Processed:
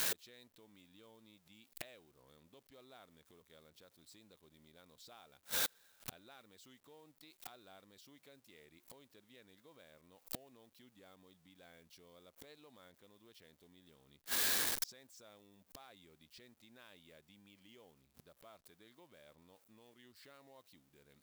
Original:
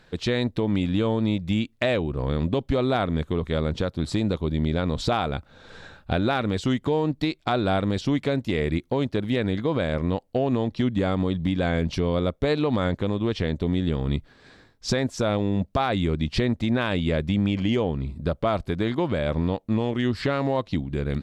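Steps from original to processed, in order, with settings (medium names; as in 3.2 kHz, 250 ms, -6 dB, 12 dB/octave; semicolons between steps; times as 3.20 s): jump at every zero crossing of -36 dBFS; RIAA curve recording; inverted gate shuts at -22 dBFS, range -35 dB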